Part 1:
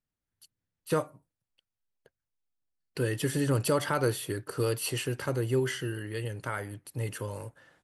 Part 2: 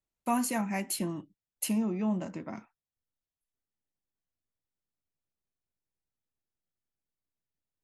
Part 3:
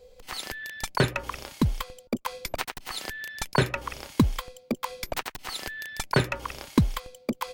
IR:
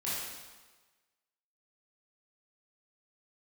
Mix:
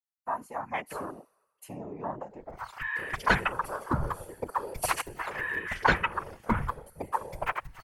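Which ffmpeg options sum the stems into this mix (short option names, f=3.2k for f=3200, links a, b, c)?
-filter_complex "[0:a]acompressor=threshold=-32dB:ratio=3,aexciter=amount=2:drive=7.6:freq=4.9k,highpass=f=460:p=1,volume=1dB,asplit=2[a][b];[b]volume=-6.5dB[c];[1:a]highpass=290,dynaudnorm=f=240:g=5:m=9.5dB,volume=-3dB[d];[2:a]aecho=1:1:6.2:0.94,adelay=2300,volume=0.5dB,asplit=2[e][f];[f]volume=-20dB[g];[3:a]atrim=start_sample=2205[h];[c][g]amix=inputs=2:normalize=0[i];[i][h]afir=irnorm=-1:irlink=0[j];[a][d][e][j]amix=inputs=4:normalize=0,afwtdn=0.0282,equalizer=f=250:t=o:w=1:g=-9,equalizer=f=1k:t=o:w=1:g=8,equalizer=f=2k:t=o:w=1:g=5,equalizer=f=4k:t=o:w=1:g=-4,afftfilt=real='hypot(re,im)*cos(2*PI*random(0))':imag='hypot(re,im)*sin(2*PI*random(1))':win_size=512:overlap=0.75"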